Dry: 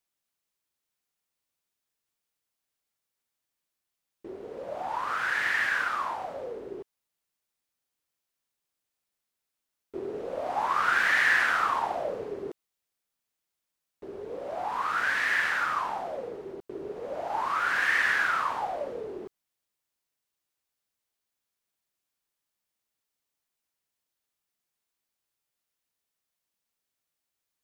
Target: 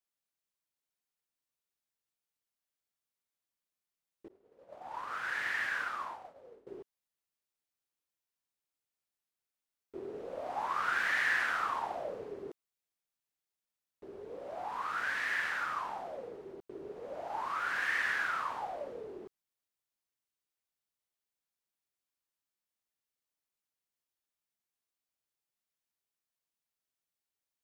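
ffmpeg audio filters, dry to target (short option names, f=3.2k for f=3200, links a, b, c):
-filter_complex "[0:a]asettb=1/sr,asplit=3[a][b][c];[a]atrim=end=4.284[d];[b]atrim=start=4.28:end=6.67,asetpts=PTS-STARTPTS,afade=t=in:d=0.004:c=qsin,afade=t=out:st=2.386:d=0.004:c=qsin,agate=range=-33dB:threshold=-28dB:ratio=3:detection=peak[e];[c]atrim=start=6.666[f];[d][e]acrossfade=d=0.004:c1=hsin:c2=qsin[g];[g][f]acrossfade=d=0.004:c1=qsin:c2=hsin,volume=-7.5dB"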